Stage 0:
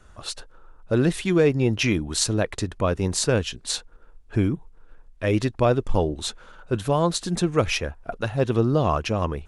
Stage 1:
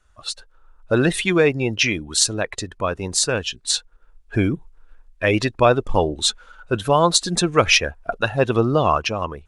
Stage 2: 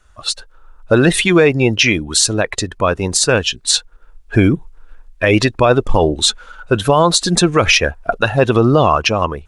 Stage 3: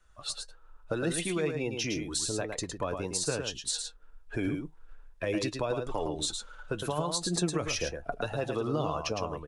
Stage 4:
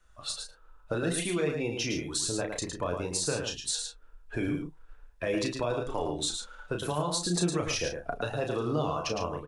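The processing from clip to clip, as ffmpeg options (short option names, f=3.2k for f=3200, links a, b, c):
-af "afftdn=nr=12:nf=-37,tiltshelf=f=630:g=-6,dynaudnorm=f=110:g=13:m=11.5dB,volume=-1dB"
-af "alimiter=level_in=9.5dB:limit=-1dB:release=50:level=0:latency=1,volume=-1dB"
-filter_complex "[0:a]acrossover=split=270|930|4900[a][b][c][d];[a]acompressor=threshold=-26dB:ratio=4[e];[b]acompressor=threshold=-20dB:ratio=4[f];[c]acompressor=threshold=-30dB:ratio=4[g];[d]acompressor=threshold=-19dB:ratio=4[h];[e][f][g][h]amix=inputs=4:normalize=0,flanger=delay=5.9:depth=1.1:regen=62:speed=1.9:shape=sinusoidal,aecho=1:1:110:0.501,volume=-8dB"
-filter_complex "[0:a]asplit=2[a][b];[b]adelay=34,volume=-5.5dB[c];[a][c]amix=inputs=2:normalize=0"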